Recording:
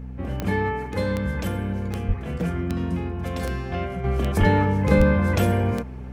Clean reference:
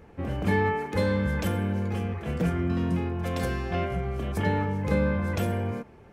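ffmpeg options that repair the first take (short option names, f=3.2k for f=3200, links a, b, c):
-filter_complex "[0:a]adeclick=t=4,bandreject=f=63.4:t=h:w=4,bandreject=f=126.8:t=h:w=4,bandreject=f=190.2:t=h:w=4,bandreject=f=253.6:t=h:w=4,asplit=3[a][b][c];[a]afade=t=out:st=2.07:d=0.02[d];[b]highpass=f=140:w=0.5412,highpass=f=140:w=1.3066,afade=t=in:st=2.07:d=0.02,afade=t=out:st=2.19:d=0.02[e];[c]afade=t=in:st=2.19:d=0.02[f];[d][e][f]amix=inputs=3:normalize=0,asplit=3[g][h][i];[g]afade=t=out:st=4.39:d=0.02[j];[h]highpass=f=140:w=0.5412,highpass=f=140:w=1.3066,afade=t=in:st=4.39:d=0.02,afade=t=out:st=4.51:d=0.02[k];[i]afade=t=in:st=4.51:d=0.02[l];[j][k][l]amix=inputs=3:normalize=0,asplit=3[m][n][o];[m]afade=t=out:st=4.97:d=0.02[p];[n]highpass=f=140:w=0.5412,highpass=f=140:w=1.3066,afade=t=in:st=4.97:d=0.02,afade=t=out:st=5.09:d=0.02[q];[o]afade=t=in:st=5.09:d=0.02[r];[p][q][r]amix=inputs=3:normalize=0,asetnsamples=n=441:p=0,asendcmd='4.04 volume volume -7dB',volume=0dB"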